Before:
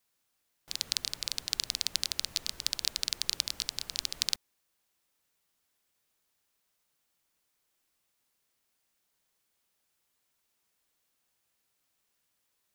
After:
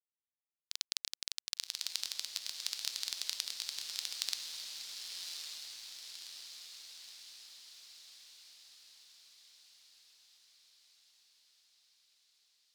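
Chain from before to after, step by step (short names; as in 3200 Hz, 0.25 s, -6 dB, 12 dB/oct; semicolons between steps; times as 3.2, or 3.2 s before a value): bell 500 Hz +9.5 dB 0.49 oct; crossover distortion -37 dBFS; diffused feedback echo 1.113 s, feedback 60%, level -4 dB; gain -6.5 dB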